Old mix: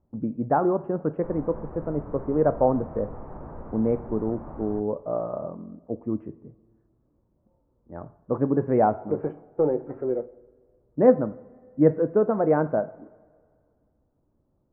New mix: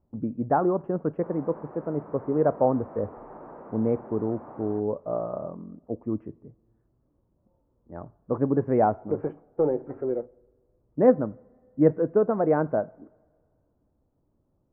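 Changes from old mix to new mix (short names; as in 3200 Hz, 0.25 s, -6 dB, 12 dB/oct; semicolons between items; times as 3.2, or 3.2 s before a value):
speech: send -8.0 dB; background: add HPF 290 Hz 12 dB/oct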